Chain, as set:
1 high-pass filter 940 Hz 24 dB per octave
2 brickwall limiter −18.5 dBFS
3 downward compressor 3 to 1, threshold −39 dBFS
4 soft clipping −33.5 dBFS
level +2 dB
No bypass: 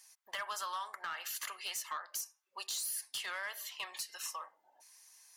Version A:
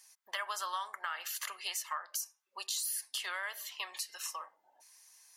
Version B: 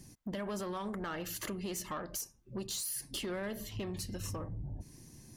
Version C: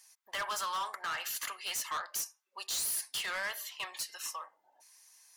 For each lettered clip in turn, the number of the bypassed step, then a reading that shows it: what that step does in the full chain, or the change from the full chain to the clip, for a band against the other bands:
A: 4, distortion level −15 dB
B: 1, 500 Hz band +16.0 dB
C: 3, average gain reduction 5.0 dB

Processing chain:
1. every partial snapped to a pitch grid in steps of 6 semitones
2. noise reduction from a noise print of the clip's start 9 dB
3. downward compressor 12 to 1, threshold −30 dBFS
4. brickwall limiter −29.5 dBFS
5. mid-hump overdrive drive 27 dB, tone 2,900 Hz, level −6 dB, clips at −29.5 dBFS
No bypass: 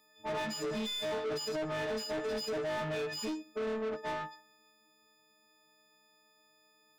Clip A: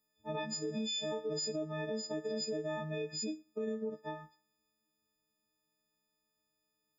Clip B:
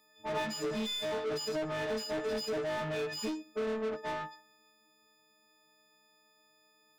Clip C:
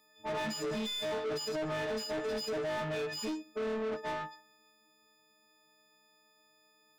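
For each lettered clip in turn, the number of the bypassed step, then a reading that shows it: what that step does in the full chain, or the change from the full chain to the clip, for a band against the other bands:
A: 5, change in crest factor +2.5 dB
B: 4, change in crest factor +4.0 dB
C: 3, average gain reduction 3.0 dB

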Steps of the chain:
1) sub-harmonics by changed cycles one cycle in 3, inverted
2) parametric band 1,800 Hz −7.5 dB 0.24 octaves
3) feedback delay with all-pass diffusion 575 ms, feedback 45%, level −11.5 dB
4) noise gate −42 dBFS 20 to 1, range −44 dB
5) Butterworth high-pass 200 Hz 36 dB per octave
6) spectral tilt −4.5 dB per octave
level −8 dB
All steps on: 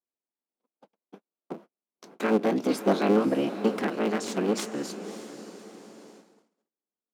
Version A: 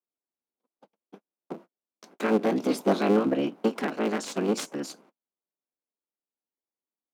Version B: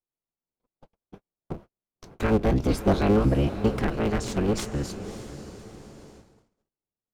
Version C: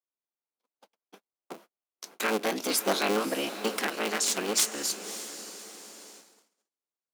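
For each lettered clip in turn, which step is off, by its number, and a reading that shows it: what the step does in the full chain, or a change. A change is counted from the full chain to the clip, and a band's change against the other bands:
3, change in momentary loudness spread −1 LU
5, 125 Hz band +12.5 dB
6, 8 kHz band +15.5 dB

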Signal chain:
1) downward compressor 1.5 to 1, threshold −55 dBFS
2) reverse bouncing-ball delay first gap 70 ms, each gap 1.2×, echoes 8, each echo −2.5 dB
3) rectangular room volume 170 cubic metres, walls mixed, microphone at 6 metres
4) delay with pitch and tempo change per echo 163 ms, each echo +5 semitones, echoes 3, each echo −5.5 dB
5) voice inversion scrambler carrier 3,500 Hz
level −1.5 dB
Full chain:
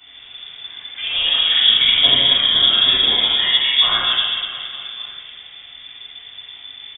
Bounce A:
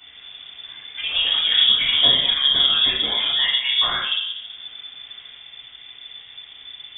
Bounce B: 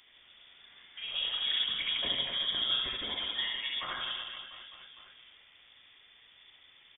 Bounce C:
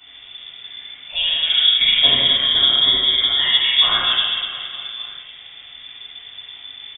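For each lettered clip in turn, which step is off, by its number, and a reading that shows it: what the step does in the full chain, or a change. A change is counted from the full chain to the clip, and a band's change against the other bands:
2, change in integrated loudness −3.5 LU
3, change in integrated loudness −18.5 LU
4, change in momentary loudness spread +2 LU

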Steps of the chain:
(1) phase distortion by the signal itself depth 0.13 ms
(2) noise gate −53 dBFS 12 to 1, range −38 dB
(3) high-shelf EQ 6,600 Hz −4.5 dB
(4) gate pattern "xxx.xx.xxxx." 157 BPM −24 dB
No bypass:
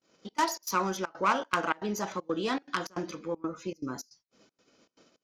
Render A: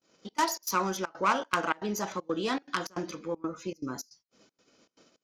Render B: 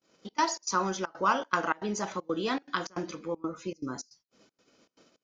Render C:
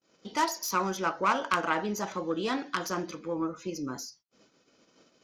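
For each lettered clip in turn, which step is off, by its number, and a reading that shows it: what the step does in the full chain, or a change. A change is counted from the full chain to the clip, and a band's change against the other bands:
3, 8 kHz band +2.0 dB
1, 8 kHz band +2.0 dB
4, change in integrated loudness +1.0 LU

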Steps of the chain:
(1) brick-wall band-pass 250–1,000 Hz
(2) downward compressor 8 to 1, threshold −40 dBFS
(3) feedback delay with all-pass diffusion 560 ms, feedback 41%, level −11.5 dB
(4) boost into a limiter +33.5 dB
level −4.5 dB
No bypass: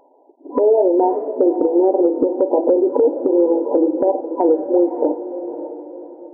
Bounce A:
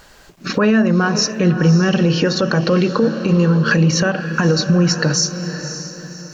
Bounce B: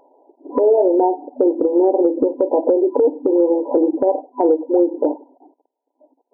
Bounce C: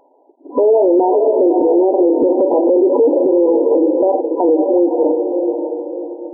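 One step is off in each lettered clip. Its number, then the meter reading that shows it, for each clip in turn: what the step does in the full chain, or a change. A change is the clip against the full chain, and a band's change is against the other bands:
1, change in momentary loudness spread −2 LU
3, change in momentary loudness spread −8 LU
2, change in crest factor −3.5 dB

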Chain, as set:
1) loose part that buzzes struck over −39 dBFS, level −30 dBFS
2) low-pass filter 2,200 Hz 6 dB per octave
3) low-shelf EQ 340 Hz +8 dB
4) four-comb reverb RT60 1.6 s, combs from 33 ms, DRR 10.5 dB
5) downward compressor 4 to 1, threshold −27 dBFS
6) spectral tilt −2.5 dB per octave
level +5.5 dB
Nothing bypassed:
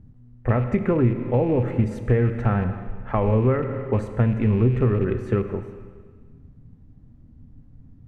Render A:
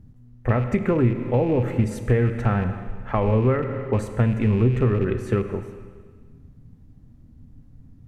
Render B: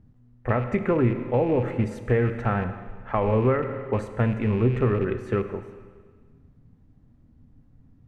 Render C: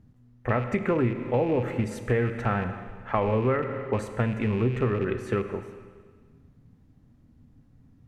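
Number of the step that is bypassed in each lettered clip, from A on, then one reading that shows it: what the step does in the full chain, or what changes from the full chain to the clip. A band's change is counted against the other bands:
2, 2 kHz band +2.0 dB
3, 125 Hz band −4.5 dB
6, 125 Hz band −6.0 dB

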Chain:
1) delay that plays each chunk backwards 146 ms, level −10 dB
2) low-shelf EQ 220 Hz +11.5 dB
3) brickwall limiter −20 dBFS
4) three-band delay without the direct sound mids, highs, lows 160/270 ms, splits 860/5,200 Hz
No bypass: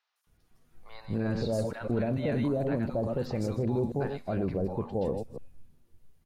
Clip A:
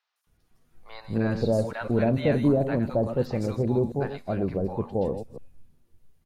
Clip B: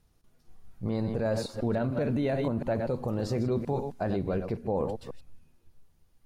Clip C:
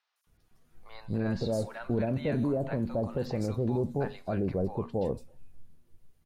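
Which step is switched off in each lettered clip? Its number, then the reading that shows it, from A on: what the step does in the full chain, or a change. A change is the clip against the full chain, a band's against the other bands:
3, average gain reduction 2.0 dB
4, echo-to-direct ratio −6.5 dB to none audible
1, change in momentary loudness spread −1 LU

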